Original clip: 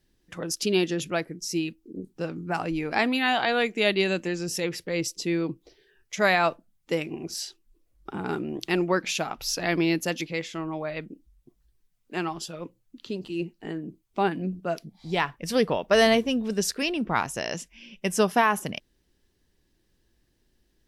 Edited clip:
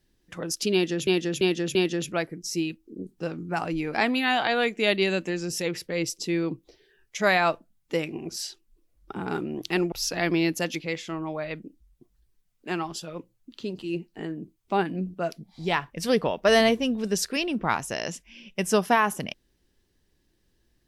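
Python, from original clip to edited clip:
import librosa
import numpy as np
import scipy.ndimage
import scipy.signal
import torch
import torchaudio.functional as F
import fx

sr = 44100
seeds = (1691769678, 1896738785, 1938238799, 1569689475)

y = fx.edit(x, sr, fx.repeat(start_s=0.73, length_s=0.34, count=4),
    fx.cut(start_s=8.9, length_s=0.48), tone=tone)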